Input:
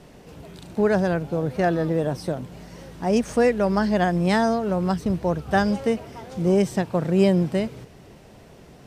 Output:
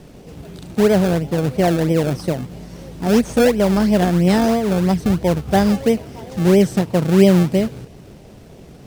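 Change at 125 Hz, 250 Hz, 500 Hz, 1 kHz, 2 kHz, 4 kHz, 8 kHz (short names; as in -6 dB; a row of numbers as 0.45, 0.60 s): +7.0, +7.0, +5.0, +2.5, +2.0, +7.5, +9.0 dB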